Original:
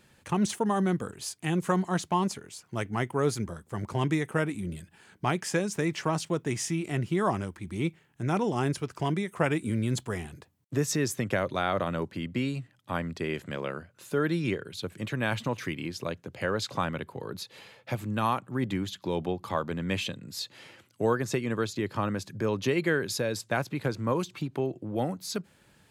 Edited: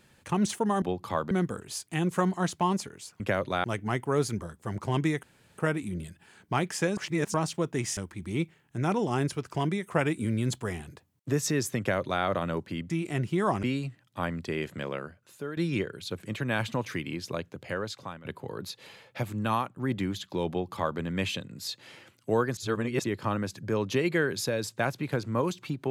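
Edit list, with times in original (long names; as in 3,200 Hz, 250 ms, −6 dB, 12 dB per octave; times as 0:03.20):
0:04.30: splice in room tone 0.35 s
0:05.69–0:06.06: reverse
0:06.69–0:07.42: move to 0:12.35
0:11.24–0:11.68: duplicate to 0:02.71
0:13.58–0:14.29: fade out linear, to −13 dB
0:16.20–0:16.97: fade out linear, to −18.5 dB
0:18.24–0:18.49: fade out, to −8 dB
0:19.22–0:19.71: duplicate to 0:00.82
0:21.29–0:21.76: reverse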